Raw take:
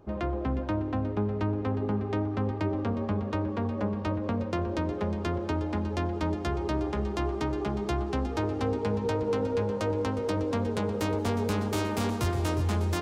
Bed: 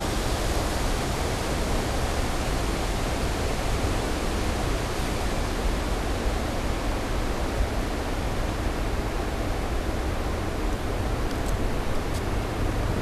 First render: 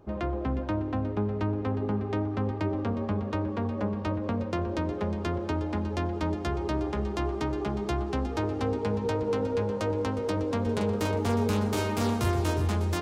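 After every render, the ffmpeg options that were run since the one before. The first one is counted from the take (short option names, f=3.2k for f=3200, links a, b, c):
-filter_complex "[0:a]asettb=1/sr,asplit=3[a][b][c];[a]atrim=end=10.624[d];[b]atrim=start=10.62:end=12.68,asetpts=PTS-STARTPTS,afade=t=in:d=0.004:c=qsin,afade=t=out:st=2.056:d=0.004:c=qsin,asplit=2[e][f];[f]adelay=43,volume=-5.5dB[g];[e][g]amix=inputs=2:normalize=0,atrim=end_sample=90846[h];[c]atrim=start=12.676[i];[d][h]acrossfade=d=0.004:c1=hsin:c2=qsin[j];[j][i]acrossfade=d=0.004:c1=qsin:c2=hsin"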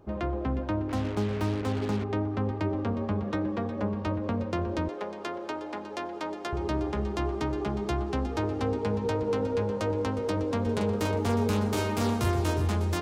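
-filter_complex "[0:a]asettb=1/sr,asplit=3[a][b][c];[a]atrim=end=0.894[d];[b]atrim=start=0.89:end=2.04,asetpts=PTS-STARTPTS,afade=t=in:d=0.004:c=qsin,afade=t=out:st=1.146:d=0.004:c=qsin,acrusher=bits=5:mix=0:aa=0.5[e];[c]atrim=start=2.036[f];[d][e]acrossfade=d=0.004:c1=hsin:c2=qsin[g];[g][f]acrossfade=d=0.004:c1=qsin:c2=hsin,asettb=1/sr,asplit=3[h][i][j];[h]atrim=end=3.234[k];[i]atrim=start=3.23:end=3.79,asetpts=PTS-STARTPTS,afade=t=in:d=0.004:c=qsin,afade=t=out:st=0.556:d=0.004:c=qsin,aecho=1:1:5.9:0.54,atrim=end_sample=24696[l];[j]atrim=start=3.786[m];[k][l]acrossfade=d=0.004:c1=hsin:c2=qsin[n];[n][m]acrossfade=d=0.004:c1=qsin:c2=hsin,asettb=1/sr,asplit=3[o][p][q];[o]atrim=end=4.884[r];[p]atrim=start=4.88:end=6.53,asetpts=PTS-STARTPTS,afade=t=in:d=0.004:c=qsin,afade=t=out:st=1.646:d=0.004:c=qsin,highpass=420[s];[q]atrim=start=6.526[t];[r][s]acrossfade=d=0.004:c1=hsin:c2=qsin[u];[u][t]acrossfade=d=0.004:c1=qsin:c2=hsin"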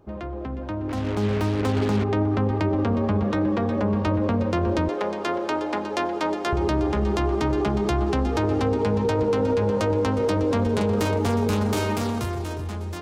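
-af "alimiter=level_in=1.5dB:limit=-24dB:level=0:latency=1:release=27,volume=-1.5dB,dynaudnorm=f=100:g=21:m=10dB"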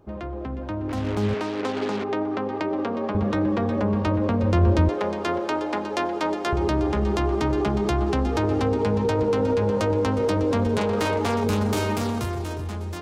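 -filter_complex "[0:a]asettb=1/sr,asplit=3[a][b][c];[a]atrim=end=1.344[d];[b]atrim=start=1.34:end=3.15,asetpts=PTS-STARTPTS,afade=t=in:d=0.004:c=qsin,afade=t=out:st=1.806:d=0.004:c=qsin,highpass=300,lowpass=7k[e];[c]atrim=start=3.146[f];[d][e]acrossfade=d=0.004:c1=hsin:c2=qsin[g];[g][f]acrossfade=d=0.004:c1=qsin:c2=hsin,asettb=1/sr,asplit=3[h][i][j];[h]atrim=end=4.434[k];[i]atrim=start=4.43:end=5.4,asetpts=PTS-STARTPTS,afade=t=in:d=0.004:c=qsin,afade=t=out:st=0.966:d=0.004:c=qsin,equalizer=f=69:w=0.67:g=10[l];[j]atrim=start=5.396[m];[k][l]acrossfade=d=0.004:c1=hsin:c2=qsin[n];[n][m]acrossfade=d=0.004:c1=qsin:c2=hsin,asettb=1/sr,asplit=3[o][p][q];[o]atrim=end=10.784[r];[p]atrim=start=10.78:end=11.44,asetpts=PTS-STARTPTS,afade=t=in:d=0.004:c=qsin,afade=t=out:st=0.656:d=0.004:c=qsin,asplit=2[s][t];[t]highpass=f=720:p=1,volume=10dB,asoftclip=type=tanh:threshold=-15dB[u];[s][u]amix=inputs=2:normalize=0,lowpass=f=4.9k:p=1,volume=-6dB[v];[q]atrim=start=11.436[w];[r][v]acrossfade=d=0.004:c1=hsin:c2=qsin[x];[x][w]acrossfade=d=0.004:c1=qsin:c2=hsin"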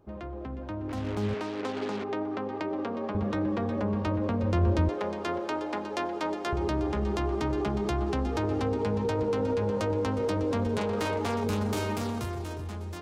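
-af "volume=-6dB"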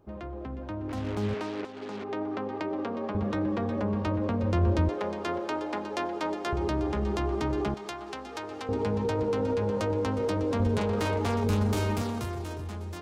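-filter_complex "[0:a]asettb=1/sr,asplit=3[a][b][c];[a]atrim=end=7.744[d];[b]atrim=start=7.74:end=8.69,asetpts=PTS-STARTPTS,afade=t=in:d=0.004:c=qsin,afade=t=out:st=0.946:d=0.004:c=qsin,highpass=f=1.2k:p=1[e];[c]atrim=start=8.686[f];[d][e]acrossfade=d=0.004:c1=hsin:c2=qsin[g];[g][f]acrossfade=d=0.004:c1=qsin:c2=hsin,asettb=1/sr,asplit=3[h][i][j];[h]atrim=end=10.604[k];[i]atrim=start=10.6:end=12.02,asetpts=PTS-STARTPTS,afade=t=in:d=0.004:c=qsin,afade=t=out:st=1.416:d=0.004:c=qsin,lowshelf=f=98:g=11.5[l];[j]atrim=start=12.016[m];[k][l]acrossfade=d=0.004:c1=hsin:c2=qsin[n];[n][m]acrossfade=d=0.004:c1=qsin:c2=hsin,asplit=2[o][p];[o]atrim=end=1.65,asetpts=PTS-STARTPTS,afade=t=out:st=1.646:d=0.004:c=hsin:silence=0.237137[q];[p]atrim=start=1.65,asetpts=PTS-STARTPTS,afade=t=in:d=0.61:silence=0.237137[r];[q][r]concat=n=2:v=0:a=1"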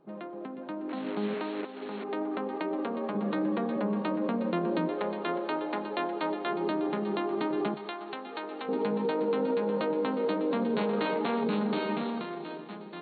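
-af "afftfilt=real='re*between(b*sr/4096,140,4400)':imag='im*between(b*sr/4096,140,4400)':win_size=4096:overlap=0.75"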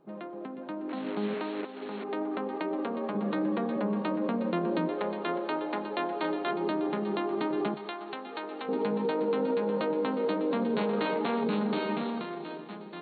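-filter_complex "[0:a]asettb=1/sr,asplit=3[a][b][c];[a]atrim=end=6.074[d];[b]atrim=start=6.07:end=6.51,asetpts=PTS-STARTPTS,afade=t=in:d=0.004:c=qsin,afade=t=out:st=0.436:d=0.004:c=qsin,asplit=2[e][f];[f]adelay=36,volume=-6dB[g];[e][g]amix=inputs=2:normalize=0,atrim=end_sample=19404[h];[c]atrim=start=6.506[i];[d][h]acrossfade=d=0.004:c1=hsin:c2=qsin[j];[j][i]acrossfade=d=0.004:c1=qsin:c2=hsin"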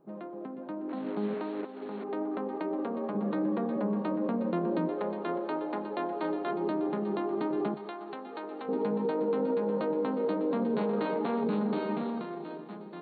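-af "equalizer=f=3.1k:w=0.62:g=-9.5"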